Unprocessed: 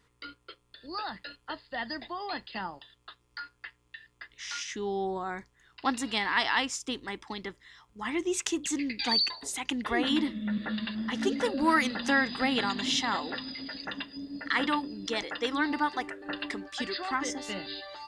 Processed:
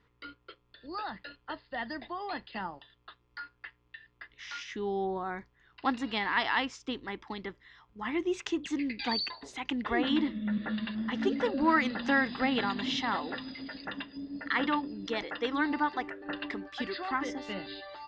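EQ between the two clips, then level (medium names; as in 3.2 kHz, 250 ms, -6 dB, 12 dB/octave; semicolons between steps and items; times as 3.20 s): distance through air 200 m; 0.0 dB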